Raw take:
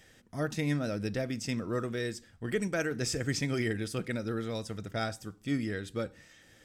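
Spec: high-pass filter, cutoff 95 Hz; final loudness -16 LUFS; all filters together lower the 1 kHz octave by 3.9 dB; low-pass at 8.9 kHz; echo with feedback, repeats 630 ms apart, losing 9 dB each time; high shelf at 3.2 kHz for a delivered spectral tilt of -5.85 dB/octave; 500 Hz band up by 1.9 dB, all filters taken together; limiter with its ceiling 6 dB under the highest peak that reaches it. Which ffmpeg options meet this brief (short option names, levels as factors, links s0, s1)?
-af "highpass=95,lowpass=8900,equalizer=f=500:t=o:g=4,equalizer=f=1000:t=o:g=-7.5,highshelf=f=3200:g=-3.5,alimiter=limit=0.0631:level=0:latency=1,aecho=1:1:630|1260|1890|2520:0.355|0.124|0.0435|0.0152,volume=8.91"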